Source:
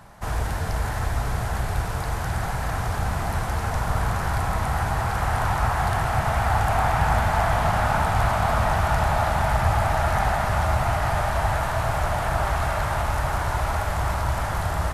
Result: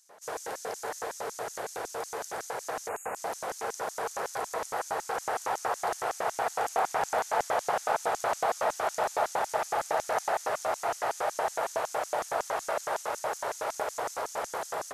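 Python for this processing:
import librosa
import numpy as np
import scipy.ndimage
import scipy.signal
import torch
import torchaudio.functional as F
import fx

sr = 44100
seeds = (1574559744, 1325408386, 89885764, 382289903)

y = fx.spec_erase(x, sr, start_s=2.89, length_s=0.27, low_hz=2900.0, high_hz=6500.0)
y = fx.filter_lfo_highpass(y, sr, shape='square', hz=5.4, low_hz=460.0, high_hz=6300.0, q=4.1)
y = F.gain(torch.from_numpy(y), -6.5).numpy()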